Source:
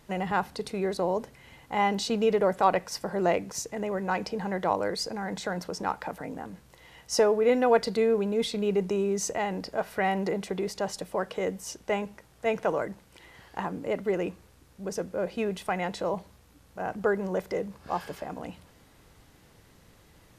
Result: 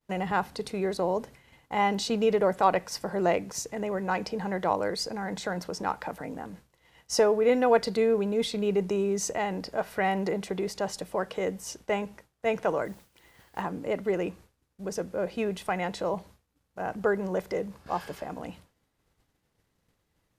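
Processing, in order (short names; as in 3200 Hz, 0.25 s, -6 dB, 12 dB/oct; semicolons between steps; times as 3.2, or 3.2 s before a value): 12.85–13.62 requantised 10-bit, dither triangular; expander -45 dBFS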